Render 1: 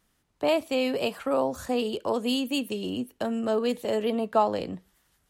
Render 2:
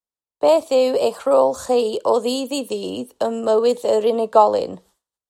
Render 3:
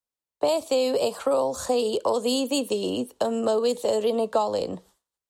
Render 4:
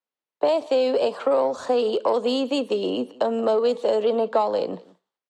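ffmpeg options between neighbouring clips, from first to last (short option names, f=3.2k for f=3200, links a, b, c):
-filter_complex "[0:a]agate=range=-33dB:threshold=-50dB:ratio=3:detection=peak,equalizer=f=500:t=o:w=1:g=11,equalizer=f=1k:t=o:w=1:g=10,equalizer=f=2k:t=o:w=1:g=-4,equalizer=f=4k:t=o:w=1:g=8,equalizer=f=8k:t=o:w=1:g=11,acrossover=split=400|1700|4700[a][b][c][d];[c]alimiter=level_in=0.5dB:limit=-24dB:level=0:latency=1:release=168,volume=-0.5dB[e];[a][b][e][d]amix=inputs=4:normalize=0,volume=-1dB"
-filter_complex "[0:a]acrossover=split=190|3000[a][b][c];[b]acompressor=threshold=-21dB:ratio=6[d];[a][d][c]amix=inputs=3:normalize=0"
-filter_complex "[0:a]asplit=2[a][b];[b]asoftclip=type=tanh:threshold=-20dB,volume=-6dB[c];[a][c]amix=inputs=2:normalize=0,highpass=220,lowpass=3.3k,aecho=1:1:178:0.0794"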